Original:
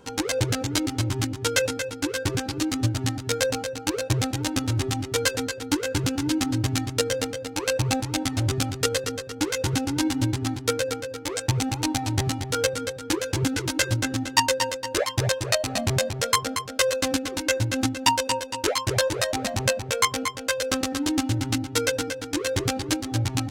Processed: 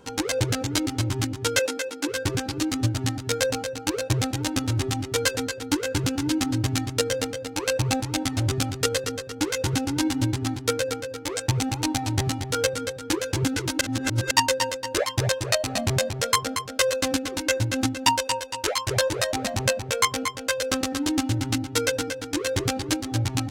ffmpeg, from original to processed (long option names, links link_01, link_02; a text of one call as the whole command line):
ffmpeg -i in.wav -filter_complex "[0:a]asettb=1/sr,asplit=3[link_01][link_02][link_03];[link_01]atrim=end=1.594[link_04];[link_02]atrim=start=1.59:end=2.08,asetpts=PTS-STARTPTS,afade=type=in:duration=0.004:curve=qsin,afade=type=out:start_time=0.486:duration=0.004:curve=qsin,highpass=frequency=240:width=0.5412,highpass=frequency=240:width=1.3066[link_05];[link_03]atrim=start=2.076[link_06];[link_04][link_05]acrossfade=duration=0.004:curve1=hsin:curve2=qsin[link_07];[link_07][link_06]acrossfade=duration=0.004:curve1=qsin:curve2=hsin,asettb=1/sr,asplit=3[link_08][link_09][link_10];[link_08]atrim=end=18.194[link_11];[link_09]atrim=start=18.19:end=18.91,asetpts=PTS-STARTPTS,afade=type=in:duration=0.004:curve=qsin,afade=type=out:start_time=0.716:duration=0.004:curve=qsin,equalizer=frequency=220:width_type=o:width=1.4:gain=-9.5[link_12];[link_10]atrim=start=18.906[link_13];[link_11][link_12]acrossfade=duration=0.004:curve1=hsin:curve2=qsin[link_14];[link_14][link_13]acrossfade=duration=0.004:curve1=qsin:curve2=hsin,asplit=3[link_15][link_16][link_17];[link_15]atrim=end=13.812[link_18];[link_16]atrim=start=13.808:end=14.312,asetpts=PTS-STARTPTS,areverse[link_19];[link_17]atrim=start=14.308[link_20];[link_18][link_19]acrossfade=duration=0.004:curve1=hsin:curve2=hsin[link_21];[link_21][link_20]acrossfade=duration=0.004:curve1=hsin:curve2=hsin" out.wav